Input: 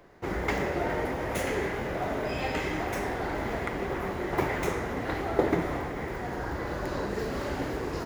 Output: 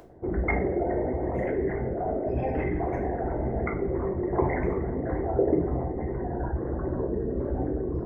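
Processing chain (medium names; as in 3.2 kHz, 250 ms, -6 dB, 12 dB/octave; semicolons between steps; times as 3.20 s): resonances exaggerated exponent 3; upward compressor, threshold -48 dBFS; reverberation, pre-delay 3 ms, DRR 0 dB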